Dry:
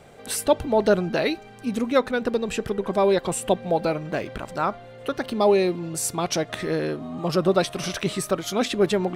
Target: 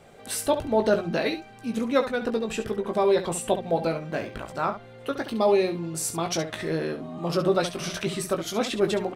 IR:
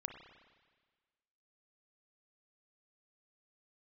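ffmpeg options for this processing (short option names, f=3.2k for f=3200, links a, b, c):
-filter_complex "[0:a]bandreject=f=60:t=h:w=6,bandreject=f=120:t=h:w=6,bandreject=f=180:t=h:w=6,asplit=2[a][b];[b]aecho=0:1:18|69:0.473|0.299[c];[a][c]amix=inputs=2:normalize=0,volume=-3.5dB"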